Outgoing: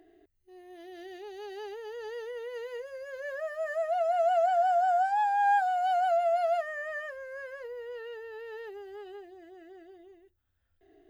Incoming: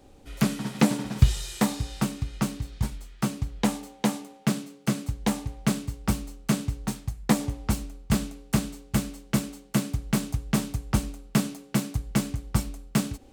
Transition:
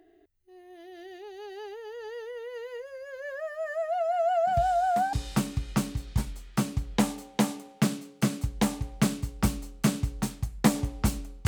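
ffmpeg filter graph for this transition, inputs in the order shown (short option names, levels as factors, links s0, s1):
-filter_complex "[1:a]asplit=2[s0][s1];[0:a]apad=whole_dur=11.47,atrim=end=11.47,atrim=end=5.132[s2];[s1]atrim=start=1.778:end=8.12[s3];[s0]atrim=start=1.12:end=1.78,asetpts=PTS-STARTPTS,volume=0.188,afade=t=in:d=0.004:c=hsin,afade=t=out:st=0.656:d=0.004:c=hsin,adelay=4470[s4];[s2][s3]acrossfade=d=0.004:c1=hsin:c2=hsin[s5];[s5][s4]amix=inputs=2:normalize=0"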